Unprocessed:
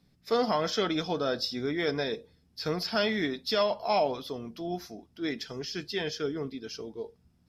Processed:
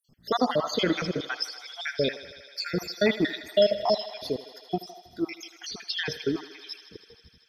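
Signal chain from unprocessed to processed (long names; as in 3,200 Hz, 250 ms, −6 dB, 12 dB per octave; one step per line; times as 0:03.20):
time-frequency cells dropped at random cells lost 73%
feedback echo with a high-pass in the loop 79 ms, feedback 85%, high-pass 360 Hz, level −15 dB
level +8 dB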